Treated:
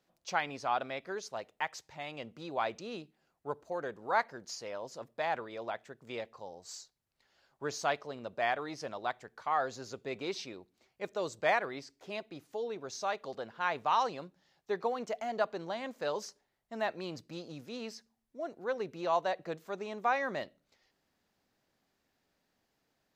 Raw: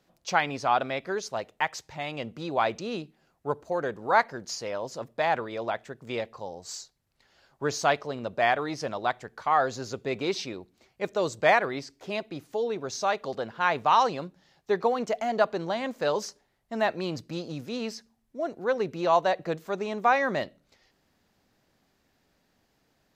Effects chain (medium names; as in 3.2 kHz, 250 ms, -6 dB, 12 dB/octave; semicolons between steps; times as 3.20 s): bass shelf 200 Hz -5.5 dB; trim -7.5 dB